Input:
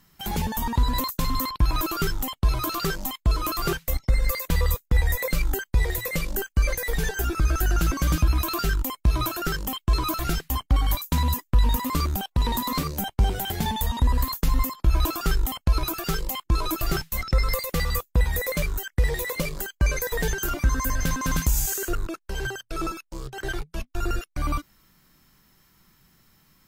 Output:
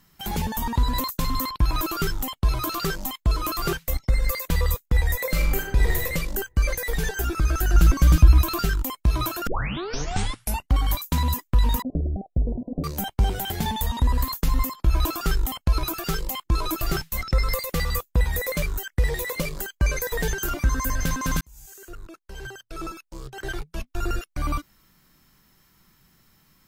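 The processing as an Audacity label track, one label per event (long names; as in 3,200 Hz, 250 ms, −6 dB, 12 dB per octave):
5.250000	6.030000	thrown reverb, RT60 0.94 s, DRR 1 dB
7.740000	8.650000	low-shelf EQ 140 Hz +9.5 dB
9.470000	9.470000	tape start 1.27 s
11.820000	12.840000	Butterworth low-pass 730 Hz 96 dB per octave
21.410000	23.850000	fade in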